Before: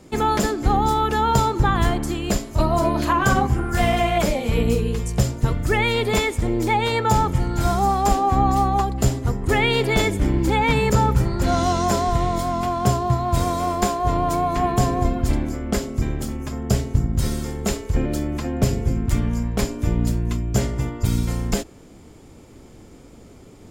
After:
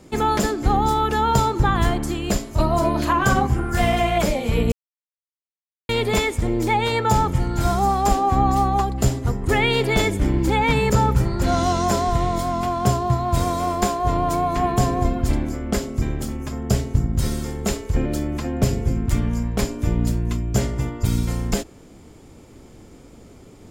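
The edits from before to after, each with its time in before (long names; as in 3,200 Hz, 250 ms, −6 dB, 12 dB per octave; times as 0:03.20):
0:04.72–0:05.89: silence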